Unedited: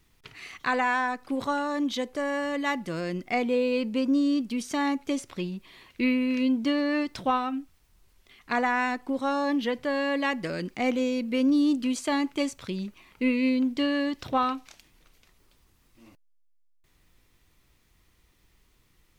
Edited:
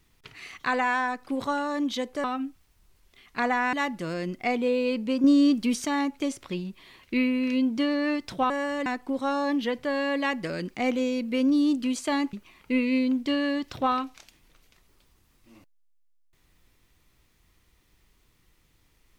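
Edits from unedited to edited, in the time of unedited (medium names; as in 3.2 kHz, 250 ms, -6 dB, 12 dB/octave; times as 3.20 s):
2.24–2.60 s: swap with 7.37–8.86 s
4.11–4.72 s: gain +5 dB
12.33–12.84 s: delete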